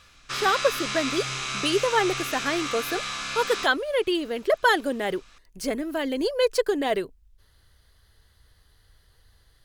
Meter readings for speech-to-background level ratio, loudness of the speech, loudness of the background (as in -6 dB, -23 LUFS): 3.5 dB, -26.0 LUFS, -29.5 LUFS